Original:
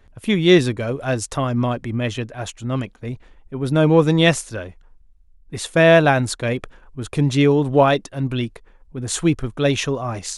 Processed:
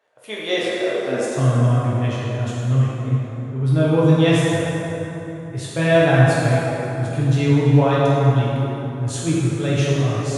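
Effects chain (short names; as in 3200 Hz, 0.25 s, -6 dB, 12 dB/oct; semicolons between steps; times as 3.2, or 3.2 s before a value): high-pass sweep 570 Hz -> 110 Hz, 0.83–1.51; plate-style reverb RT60 3.6 s, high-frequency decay 0.55×, DRR -8 dB; gain -10.5 dB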